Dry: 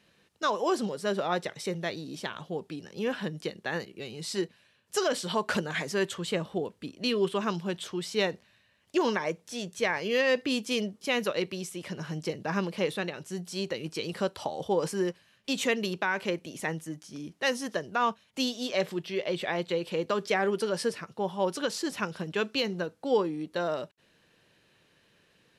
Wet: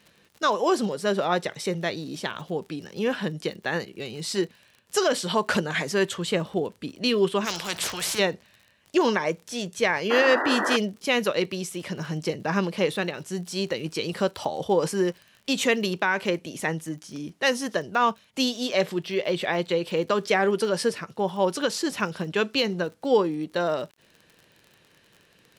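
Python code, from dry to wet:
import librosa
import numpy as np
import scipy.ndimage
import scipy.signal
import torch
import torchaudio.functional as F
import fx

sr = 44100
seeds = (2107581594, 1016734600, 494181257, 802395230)

y = fx.spec_paint(x, sr, seeds[0], shape='noise', start_s=10.1, length_s=0.67, low_hz=250.0, high_hz=2000.0, level_db=-31.0)
y = fx.dmg_crackle(y, sr, seeds[1], per_s=38.0, level_db=-43.0)
y = fx.spectral_comp(y, sr, ratio=4.0, at=(7.44, 8.18), fade=0.02)
y = y * 10.0 ** (5.0 / 20.0)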